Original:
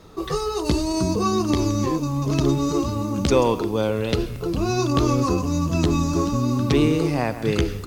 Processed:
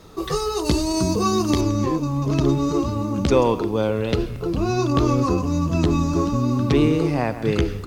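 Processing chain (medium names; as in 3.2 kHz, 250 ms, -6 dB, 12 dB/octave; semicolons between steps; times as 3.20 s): treble shelf 4.3 kHz +3.5 dB, from 1.61 s -7.5 dB; trim +1 dB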